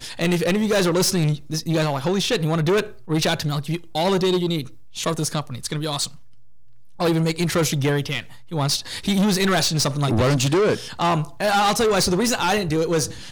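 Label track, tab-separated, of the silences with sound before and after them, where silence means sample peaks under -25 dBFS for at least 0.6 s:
6.060000	7.000000	silence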